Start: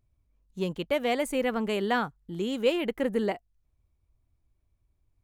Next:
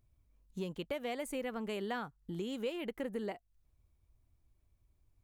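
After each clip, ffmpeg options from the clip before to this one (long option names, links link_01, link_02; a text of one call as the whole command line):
ffmpeg -i in.wav -af "highshelf=frequency=9100:gain=3.5,acompressor=threshold=-39dB:ratio=3" out.wav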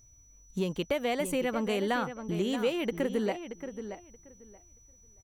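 ffmpeg -i in.wav -filter_complex "[0:a]aeval=exprs='val(0)+0.000447*sin(2*PI*5900*n/s)':channel_layout=same,asplit=2[link_01][link_02];[link_02]adelay=628,lowpass=frequency=2800:poles=1,volume=-9.5dB,asplit=2[link_03][link_04];[link_04]adelay=628,lowpass=frequency=2800:poles=1,volume=0.18,asplit=2[link_05][link_06];[link_06]adelay=628,lowpass=frequency=2800:poles=1,volume=0.18[link_07];[link_01][link_03][link_05][link_07]amix=inputs=4:normalize=0,volume=8.5dB" out.wav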